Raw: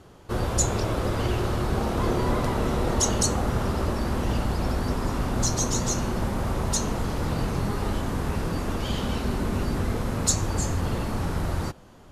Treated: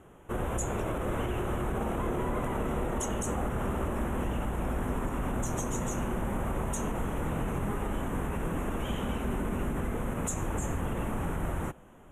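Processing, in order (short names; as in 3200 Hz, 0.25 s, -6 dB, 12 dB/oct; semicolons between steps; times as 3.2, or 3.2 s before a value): Butterworth band-stop 4700 Hz, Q 1.1; bell 98 Hz -6.5 dB 0.55 oct; limiter -19.5 dBFS, peak gain reduction 7.5 dB; gain -3 dB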